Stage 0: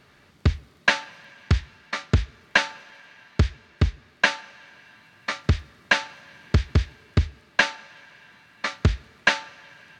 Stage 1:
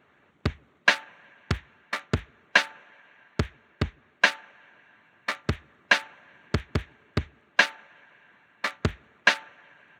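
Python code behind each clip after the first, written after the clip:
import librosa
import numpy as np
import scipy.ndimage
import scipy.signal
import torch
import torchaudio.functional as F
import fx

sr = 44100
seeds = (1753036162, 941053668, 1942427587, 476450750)

y = fx.wiener(x, sr, points=9)
y = fx.highpass(y, sr, hz=230.0, slope=6)
y = fx.hpss(y, sr, part='harmonic', gain_db=-7)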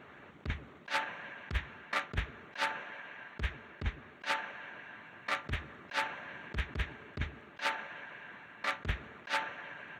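y = fx.high_shelf(x, sr, hz=5900.0, db=-8.0)
y = fx.over_compress(y, sr, threshold_db=-35.0, ratio=-1.0)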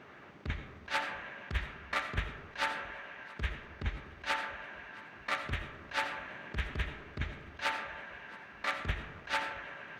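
y = fx.dmg_buzz(x, sr, base_hz=400.0, harmonics=16, level_db=-72.0, tilt_db=-4, odd_only=False)
y = fx.echo_feedback(y, sr, ms=670, feedback_pct=58, wet_db=-24.0)
y = fx.rev_freeverb(y, sr, rt60_s=0.83, hf_ratio=0.45, predelay_ms=40, drr_db=7.5)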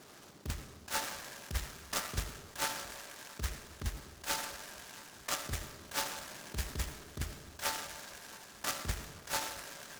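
y = fx.noise_mod_delay(x, sr, seeds[0], noise_hz=4200.0, depth_ms=0.11)
y = y * librosa.db_to_amplitude(-2.0)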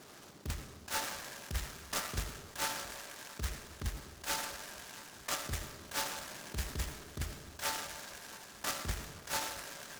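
y = 10.0 ** (-27.0 / 20.0) * np.tanh(x / 10.0 ** (-27.0 / 20.0))
y = y * librosa.db_to_amplitude(1.0)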